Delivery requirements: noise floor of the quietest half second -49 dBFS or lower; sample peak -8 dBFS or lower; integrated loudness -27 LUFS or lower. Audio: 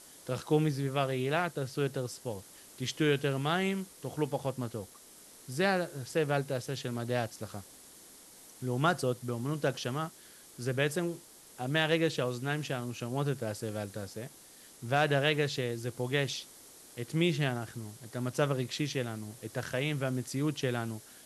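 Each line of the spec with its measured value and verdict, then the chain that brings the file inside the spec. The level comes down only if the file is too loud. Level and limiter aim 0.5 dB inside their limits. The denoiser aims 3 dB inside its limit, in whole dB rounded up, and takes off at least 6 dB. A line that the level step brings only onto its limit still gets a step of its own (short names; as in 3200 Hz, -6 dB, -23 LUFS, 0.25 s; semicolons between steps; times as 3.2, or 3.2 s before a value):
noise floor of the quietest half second -55 dBFS: OK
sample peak -14.0 dBFS: OK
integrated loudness -33.0 LUFS: OK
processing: none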